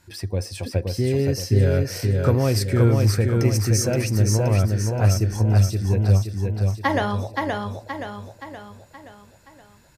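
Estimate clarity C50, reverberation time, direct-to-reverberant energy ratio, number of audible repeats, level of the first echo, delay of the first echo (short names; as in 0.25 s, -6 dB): none, none, none, 6, -3.5 dB, 0.523 s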